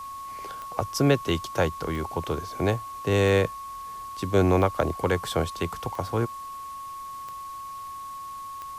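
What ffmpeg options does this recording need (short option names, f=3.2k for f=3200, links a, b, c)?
-af "adeclick=t=4,bandreject=f=1.1k:w=30,afwtdn=0.0028"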